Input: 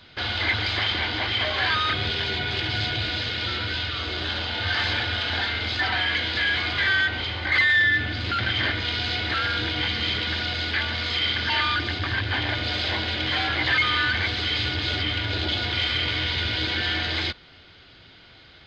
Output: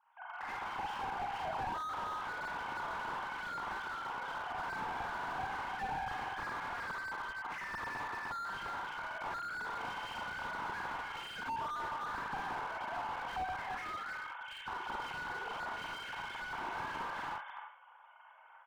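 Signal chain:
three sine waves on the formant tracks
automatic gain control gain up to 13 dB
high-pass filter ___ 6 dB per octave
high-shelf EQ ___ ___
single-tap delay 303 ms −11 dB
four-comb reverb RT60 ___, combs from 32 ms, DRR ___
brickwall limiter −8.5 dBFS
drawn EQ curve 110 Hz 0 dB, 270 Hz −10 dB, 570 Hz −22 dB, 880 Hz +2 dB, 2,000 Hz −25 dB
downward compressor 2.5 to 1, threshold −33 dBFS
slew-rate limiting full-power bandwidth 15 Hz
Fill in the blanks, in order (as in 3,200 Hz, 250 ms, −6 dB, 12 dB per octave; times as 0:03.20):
1,300 Hz, 2,500 Hz, −8.5 dB, 0.48 s, −1 dB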